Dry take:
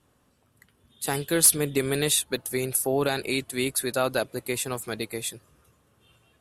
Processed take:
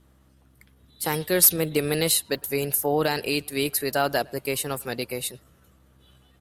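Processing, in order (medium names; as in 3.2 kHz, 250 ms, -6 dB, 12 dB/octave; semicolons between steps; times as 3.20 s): hum 60 Hz, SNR 33 dB; speakerphone echo 110 ms, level -26 dB; pitch shift +1.5 st; trim +1.5 dB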